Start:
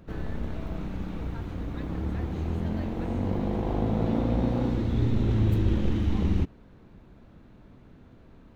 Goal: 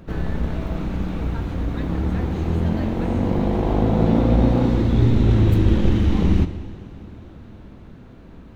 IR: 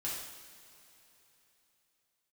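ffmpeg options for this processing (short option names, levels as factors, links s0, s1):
-filter_complex "[0:a]asplit=2[s0][s1];[1:a]atrim=start_sample=2205,asetrate=22932,aresample=44100[s2];[s1][s2]afir=irnorm=-1:irlink=0,volume=0.158[s3];[s0][s3]amix=inputs=2:normalize=0,volume=2.24"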